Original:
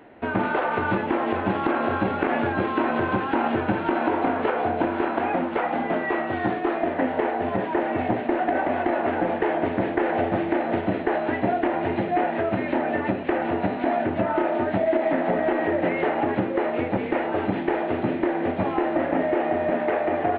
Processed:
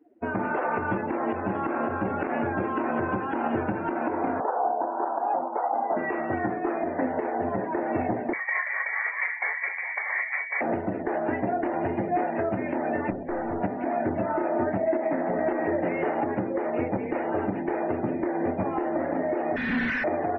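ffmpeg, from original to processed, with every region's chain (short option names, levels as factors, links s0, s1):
-filter_complex "[0:a]asettb=1/sr,asplit=3[s0][s1][s2];[s0]atrim=end=4.404[s3];[s1]atrim=start=4.4:end=5.97,asetpts=PTS-STARTPTS,afade=t=in:d=0.004:c=qsin,afade=t=out:st=1.566:d=0.004:c=qsin,acontrast=26,bandpass=f=820:t=q:w=2.4,aemphasis=mode=reproduction:type=50fm[s4];[s2]atrim=start=5.966[s5];[s3][s4]acrossfade=d=0.004:c1=hsin:c2=qsin[s6];[s6][s5]acrossfade=d=0.004:c1=qsin:c2=hsin,asettb=1/sr,asplit=3[s7][s8][s9];[s7]atrim=end=8.334[s10];[s8]atrim=start=8.33:end=10.61,asetpts=PTS-STARTPTS,afade=t=in:d=0.004:c=qsin,afade=t=out:st=2.276:d=0.004:c=qsin,tremolo=f=4.4:d=0.41,highpass=350,lowpass=f=2200:t=q:w=0.5098,lowpass=f=2200:t=q:w=0.6013,lowpass=f=2200:t=q:w=0.9,lowpass=f=2200:t=q:w=2.563,afreqshift=-2600[s11];[s9]atrim=start=10.606[s12];[s10][s11]acrossfade=d=0.004:c1=hsin:c2=qsin[s13];[s13][s12]acrossfade=d=0.004:c1=qsin:c2=hsin,asettb=1/sr,asplit=3[s14][s15][s16];[s14]atrim=end=13.104[s17];[s15]atrim=start=13.1:end=13.61,asetpts=PTS-STARTPTS,afade=t=in:d=0.004:c=qsin,afade=t=out:st=0.506:d=0.004:c=qsin,acrossover=split=2600[s18][s19];[s19]acompressor=threshold=0.00126:ratio=4:attack=1:release=60[s20];[s18][s20]amix=inputs=2:normalize=0,aeval=exprs='(tanh(17.8*val(0)+0.25)-tanh(0.25))/17.8':c=same[s21];[s16]atrim=start=13.606[s22];[s17][s21]acrossfade=d=0.004:c1=hsin:c2=qsin[s23];[s23][s22]acrossfade=d=0.004:c1=qsin:c2=hsin,asettb=1/sr,asplit=3[s24][s25][s26];[s24]atrim=end=19.564[s27];[s25]atrim=start=19.56:end=20.04,asetpts=PTS-STARTPTS,afade=t=in:d=0.004:c=qsin,afade=t=out:st=0.476:d=0.004:c=qsin,asuperstop=centerf=640:order=20:qfactor=0.53,aecho=1:1:4:0.48,atrim=end_sample=21168,asplit=2[s28][s29];[s29]highpass=f=720:p=1,volume=79.4,asoftclip=type=tanh:threshold=0.126[s30];[s28][s30]amix=inputs=2:normalize=0,lowpass=f=2400:p=1,volume=0.501[s31];[s26]atrim=start=20.036[s32];[s27][s31]acrossfade=d=0.004:c1=hsin:c2=qsin[s33];[s33][s32]acrossfade=d=0.004:c1=qsin:c2=hsin,afftdn=nr=27:nf=-36,highshelf=f=3700:g=-9.5,alimiter=limit=0.15:level=0:latency=1:release=216"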